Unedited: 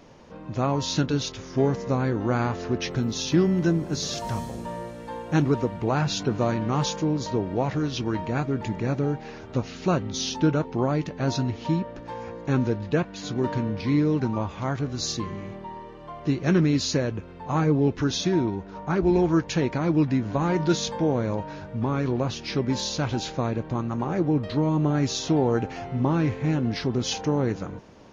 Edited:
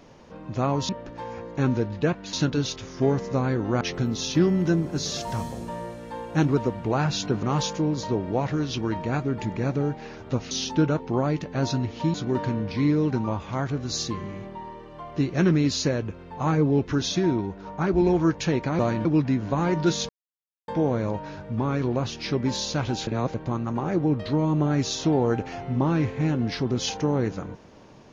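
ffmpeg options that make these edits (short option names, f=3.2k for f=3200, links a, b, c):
-filter_complex "[0:a]asplit=12[a][b][c][d][e][f][g][h][i][j][k][l];[a]atrim=end=0.892[m];[b]atrim=start=11.788:end=13.232[n];[c]atrim=start=0.888:end=2.372[o];[d]atrim=start=2.778:end=6.402[p];[e]atrim=start=6.658:end=9.742[q];[f]atrim=start=10.158:end=11.792[r];[g]atrim=start=13.228:end=19.882[s];[h]atrim=start=6.398:end=6.662[t];[i]atrim=start=19.878:end=20.92,asetpts=PTS-STARTPTS,afade=t=out:st=1.038:d=0.004:c=hsin,apad=pad_dur=0.59[u];[j]atrim=start=20.92:end=23.312,asetpts=PTS-STARTPTS,afade=t=in:d=0.004:c=hsin[v];[k]atrim=start=23.308:end=23.582,asetpts=PTS-STARTPTS,areverse[w];[l]atrim=start=23.578[x];[m][n]acrossfade=d=0.004:c1=hsin:c2=hsin[y];[y][o]acrossfade=d=0.004:c1=hsin:c2=hsin[z];[z][p]acrossfade=d=0.004:c1=hsin:c2=hsin[aa];[aa][q]acrossfade=d=0.004:c1=hsin:c2=hsin[ab];[ab][r]acrossfade=d=0.004:c1=hsin:c2=hsin[ac];[ac][s]acrossfade=d=0.004:c1=hsin:c2=hsin[ad];[ad][t]acrossfade=d=0.004:c1=hsin:c2=hsin[ae];[u][v]concat=n=2:v=0:a=1[af];[ae][af]acrossfade=d=0.004:c1=hsin:c2=hsin[ag];[ag][w]acrossfade=d=0.004:c1=hsin:c2=hsin[ah];[ah][x]acrossfade=d=0.004:c1=hsin:c2=hsin"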